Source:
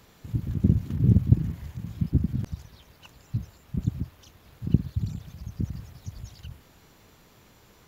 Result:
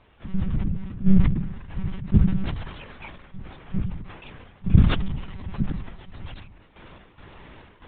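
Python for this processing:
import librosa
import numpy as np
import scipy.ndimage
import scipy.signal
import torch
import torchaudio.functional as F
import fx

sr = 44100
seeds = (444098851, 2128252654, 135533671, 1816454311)

p1 = fx.law_mismatch(x, sr, coded='mu')
p2 = fx.step_gate(p1, sr, bpm=71, pattern='.xx..x..x.xx', floor_db=-12.0, edge_ms=4.5)
p3 = fx.tilt_shelf(p2, sr, db=-3.5, hz=820.0)
p4 = fx.formant_shift(p3, sr, semitones=-3)
p5 = fx.level_steps(p4, sr, step_db=12)
p6 = p4 + (p5 * librosa.db_to_amplitude(2.5))
p7 = scipy.signal.sosfilt(scipy.signal.butter(2, 96.0, 'highpass', fs=sr, output='sos'), p6)
p8 = fx.lpc_monotone(p7, sr, seeds[0], pitch_hz=190.0, order=16)
p9 = scipy.signal.sosfilt(scipy.signal.butter(2, 2900.0, 'lowpass', fs=sr, output='sos'), p8)
p10 = fx.low_shelf(p9, sr, hz=330.0, db=6.5)
y = fx.sustainer(p10, sr, db_per_s=58.0)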